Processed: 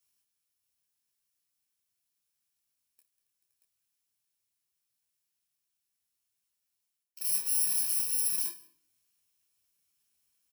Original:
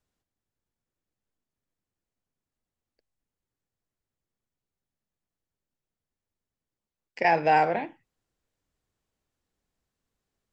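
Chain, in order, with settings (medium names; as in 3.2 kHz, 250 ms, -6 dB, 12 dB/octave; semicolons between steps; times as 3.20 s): bit-reversed sample order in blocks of 64 samples; high-pass 55 Hz; treble shelf 3.9 kHz +5.5 dB; multi-tap echo 58/192/276/434/517/630 ms -14/-15.5/-19.5/-15/-15.5/-7.5 dB; reverse; compression 12:1, threshold -30 dBFS, peak gain reduction 19 dB; reverse; tilt shelf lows -8.5 dB, about 910 Hz; on a send at -19 dB: reverberation RT60 0.50 s, pre-delay 132 ms; on the sum: detune thickener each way 27 cents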